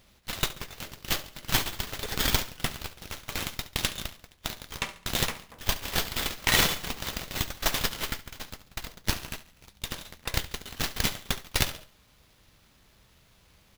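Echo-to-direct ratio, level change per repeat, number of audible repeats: −15.5 dB, −8.5 dB, 3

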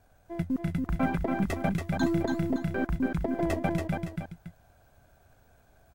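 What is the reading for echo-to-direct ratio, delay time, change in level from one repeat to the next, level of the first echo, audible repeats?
−3.0 dB, 282 ms, −9.0 dB, −3.5 dB, 2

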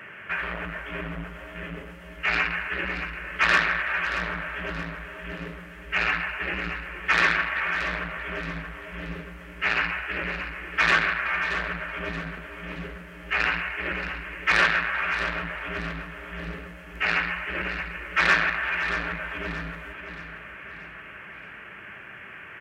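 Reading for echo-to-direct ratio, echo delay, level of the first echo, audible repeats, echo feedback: −9.0 dB, 627 ms, −10.0 dB, 4, 43%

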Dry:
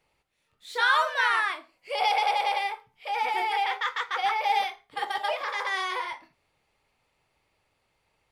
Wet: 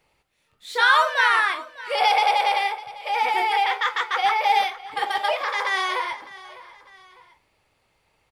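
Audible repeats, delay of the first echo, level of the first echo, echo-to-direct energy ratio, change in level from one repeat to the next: 2, 603 ms, −18.5 dB, −17.5 dB, −7.0 dB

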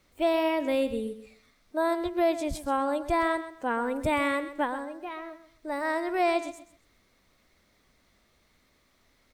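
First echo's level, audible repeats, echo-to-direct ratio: −13.0 dB, 2, −13.0 dB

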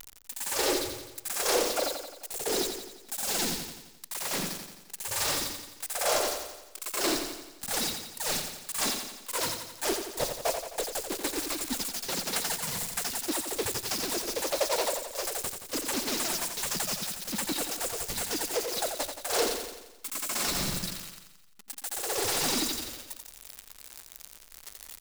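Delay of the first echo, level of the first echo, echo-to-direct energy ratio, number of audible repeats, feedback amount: 87 ms, −7.0 dB, −5.5 dB, 6, 56%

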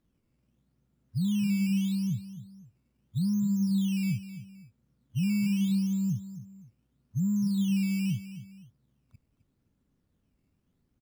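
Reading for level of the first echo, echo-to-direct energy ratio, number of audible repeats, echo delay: −13.0 dB, −12.5 dB, 2, 260 ms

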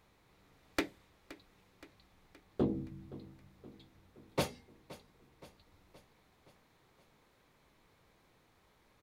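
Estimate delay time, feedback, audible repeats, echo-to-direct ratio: 521 ms, 57%, 4, −16.5 dB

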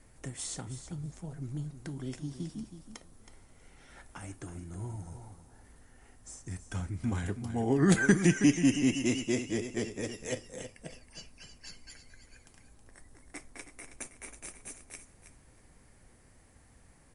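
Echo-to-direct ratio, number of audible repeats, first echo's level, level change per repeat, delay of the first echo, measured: −11.0 dB, 2, −11.0 dB, −16.0 dB, 321 ms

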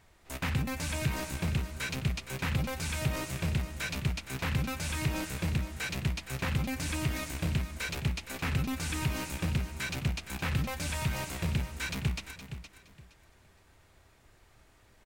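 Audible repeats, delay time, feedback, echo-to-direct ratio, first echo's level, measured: 2, 467 ms, 24%, −10.5 dB, −11.0 dB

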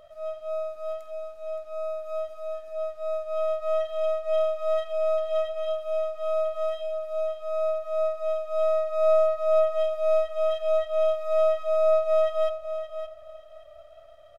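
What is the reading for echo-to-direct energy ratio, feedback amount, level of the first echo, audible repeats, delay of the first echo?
−10.0 dB, 21%, −10.0 dB, 2, 570 ms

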